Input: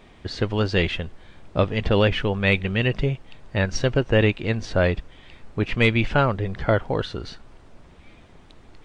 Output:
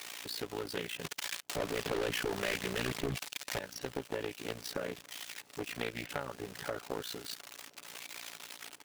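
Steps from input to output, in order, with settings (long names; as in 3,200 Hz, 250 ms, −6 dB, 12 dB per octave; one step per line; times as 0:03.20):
spike at every zero crossing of −14 dBFS
high-pass filter 210 Hz 12 dB per octave
high-shelf EQ 5,000 Hz −11.5 dB
comb filter 7 ms, depth 71%
0:01.04–0:03.59: leveller curve on the samples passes 5
downward compressor 6 to 1, threshold −22 dBFS, peak gain reduction 13.5 dB
amplitude modulation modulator 58 Hz, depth 75%
delay with a high-pass on its return 988 ms, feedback 62%, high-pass 3,800 Hz, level −22.5 dB
highs frequency-modulated by the lows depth 0.75 ms
level −8.5 dB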